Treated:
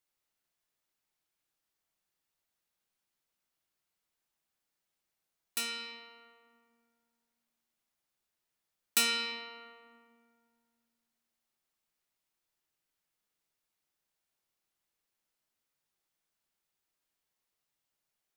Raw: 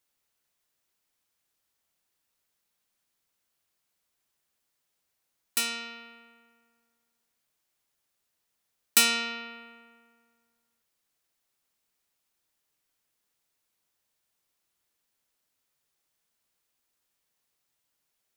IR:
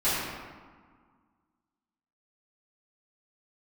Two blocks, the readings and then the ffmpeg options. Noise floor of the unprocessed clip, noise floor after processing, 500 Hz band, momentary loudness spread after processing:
−80 dBFS, below −85 dBFS, −4.5 dB, 21 LU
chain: -filter_complex "[0:a]asplit=2[link_01][link_02];[1:a]atrim=start_sample=2205,lowpass=6400[link_03];[link_02][link_03]afir=irnorm=-1:irlink=0,volume=-16dB[link_04];[link_01][link_04]amix=inputs=2:normalize=0,volume=-7.5dB"

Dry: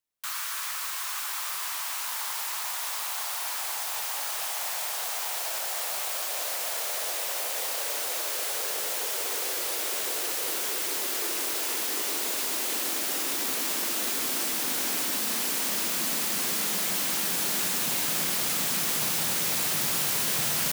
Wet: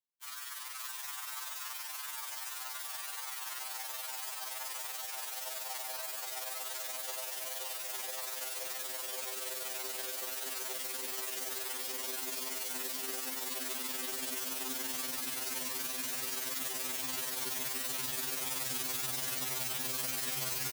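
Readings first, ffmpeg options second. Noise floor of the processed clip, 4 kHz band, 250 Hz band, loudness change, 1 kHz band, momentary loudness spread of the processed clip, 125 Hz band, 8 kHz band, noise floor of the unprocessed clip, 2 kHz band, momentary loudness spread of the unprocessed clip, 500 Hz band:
−43 dBFS, −9.0 dB, −10.0 dB, −9.0 dB, −9.0 dB, 6 LU, can't be measured, −9.0 dB, −33 dBFS, −9.0 dB, 5 LU, −8.5 dB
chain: -filter_complex "[0:a]asplit=2[link_01][link_02];[link_02]aecho=0:1:532:0.668[link_03];[link_01][link_03]amix=inputs=2:normalize=0,tremolo=f=21:d=0.857,afftfilt=real='re*2.45*eq(mod(b,6),0)':imag='im*2.45*eq(mod(b,6),0)':win_size=2048:overlap=0.75,volume=-4.5dB"

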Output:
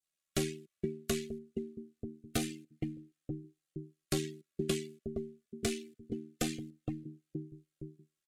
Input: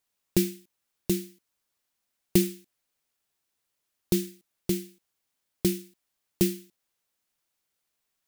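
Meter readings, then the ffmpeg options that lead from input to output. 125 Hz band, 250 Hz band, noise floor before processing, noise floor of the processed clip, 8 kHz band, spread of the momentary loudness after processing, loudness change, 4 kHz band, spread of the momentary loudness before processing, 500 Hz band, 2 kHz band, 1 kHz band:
−6.5 dB, −8.0 dB, −81 dBFS, below −85 dBFS, −5.5 dB, 13 LU, −10.5 dB, −3.0 dB, 18 LU, −4.5 dB, 0.0 dB, can't be measured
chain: -filter_complex "[0:a]lowpass=7200,asplit=2[link_01][link_02];[link_02]acompressor=threshold=-34dB:ratio=6,volume=0.5dB[link_03];[link_01][link_03]amix=inputs=2:normalize=0,asplit=2[link_04][link_05];[link_05]adelay=468,lowpass=frequency=820:poles=1,volume=-11.5dB,asplit=2[link_06][link_07];[link_07]adelay=468,lowpass=frequency=820:poles=1,volume=0.46,asplit=2[link_08][link_09];[link_09]adelay=468,lowpass=frequency=820:poles=1,volume=0.46,asplit=2[link_10][link_11];[link_11]adelay=468,lowpass=frequency=820:poles=1,volume=0.46,asplit=2[link_12][link_13];[link_13]adelay=468,lowpass=frequency=820:poles=1,volume=0.46[link_14];[link_04][link_06][link_08][link_10][link_12][link_14]amix=inputs=6:normalize=0,asoftclip=type=hard:threshold=-19.5dB,adynamicequalizer=threshold=0.00398:dfrequency=1600:dqfactor=0.74:tfrequency=1600:tqfactor=0.74:attack=5:release=100:ratio=0.375:range=2.5:mode=boostabove:tftype=bell,aeval=exprs='val(0)*sin(2*PI*39*n/s)':channel_layout=same,afftdn=noise_reduction=18:noise_floor=-52,equalizer=frequency=5300:width=2.4:gain=-5,acrossover=split=410|3900[link_15][link_16][link_17];[link_15]acompressor=threshold=-41dB:ratio=4[link_18];[link_16]acompressor=threshold=-43dB:ratio=4[link_19];[link_17]acompressor=threshold=-55dB:ratio=4[link_20];[link_18][link_19][link_20]amix=inputs=3:normalize=0,crystalizer=i=2:c=0,asuperstop=centerf=920:order=20:qfactor=3.3,asplit=2[link_21][link_22];[link_22]adelay=3.2,afreqshift=0.25[link_23];[link_21][link_23]amix=inputs=2:normalize=1,volume=8.5dB"

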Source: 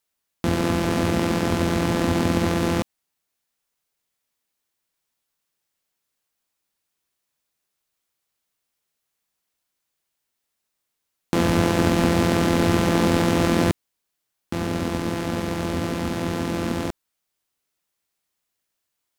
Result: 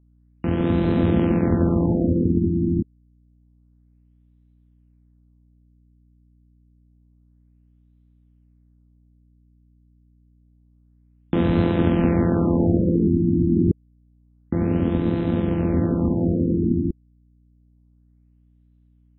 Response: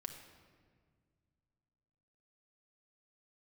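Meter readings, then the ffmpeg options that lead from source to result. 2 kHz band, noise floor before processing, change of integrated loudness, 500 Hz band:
−10.0 dB, −80 dBFS, +1.5 dB, −0.5 dB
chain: -filter_complex "[0:a]acrossover=split=460|1400[link_01][link_02][link_03];[link_01]dynaudnorm=framelen=200:gausssize=5:maxgain=15dB[link_04];[link_04][link_02][link_03]amix=inputs=3:normalize=0,aeval=exprs='val(0)+0.00355*(sin(2*PI*60*n/s)+sin(2*PI*2*60*n/s)/2+sin(2*PI*3*60*n/s)/3+sin(2*PI*4*60*n/s)/4+sin(2*PI*5*60*n/s)/5)':channel_layout=same,afftfilt=real='re*lt(b*sr/1024,370*pow(4100/370,0.5+0.5*sin(2*PI*0.28*pts/sr)))':imag='im*lt(b*sr/1024,370*pow(4100/370,0.5+0.5*sin(2*PI*0.28*pts/sr)))':win_size=1024:overlap=0.75,volume=-6.5dB"

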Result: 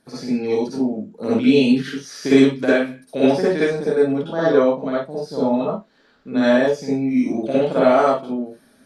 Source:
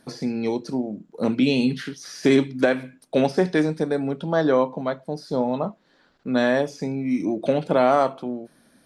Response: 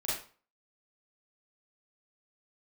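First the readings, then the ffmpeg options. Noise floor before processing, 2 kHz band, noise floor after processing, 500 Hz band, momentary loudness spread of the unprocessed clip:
−61 dBFS, +3.5 dB, −56 dBFS, +4.5 dB, 12 LU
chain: -filter_complex "[1:a]atrim=start_sample=2205,afade=type=out:start_time=0.13:duration=0.01,atrim=end_sample=6174,asetrate=30429,aresample=44100[link_01];[0:a][link_01]afir=irnorm=-1:irlink=0,volume=-4dB"

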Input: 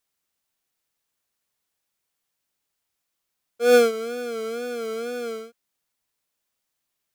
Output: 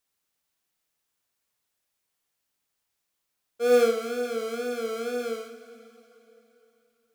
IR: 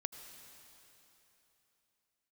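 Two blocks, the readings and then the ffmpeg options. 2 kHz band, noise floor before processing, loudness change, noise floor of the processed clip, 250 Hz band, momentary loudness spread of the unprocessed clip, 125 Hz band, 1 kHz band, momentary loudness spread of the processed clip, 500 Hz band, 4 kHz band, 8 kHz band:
−5.5 dB, −80 dBFS, −3.0 dB, −80 dBFS, −3.0 dB, 14 LU, can't be measured, −3.5 dB, 13 LU, −2.5 dB, −4.5 dB, −4.0 dB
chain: -filter_complex "[0:a]asoftclip=type=tanh:threshold=-14.5dB,asplit=2[link_01][link_02];[1:a]atrim=start_sample=2205,adelay=57[link_03];[link_02][link_03]afir=irnorm=-1:irlink=0,volume=-3dB[link_04];[link_01][link_04]amix=inputs=2:normalize=0,volume=-1.5dB"

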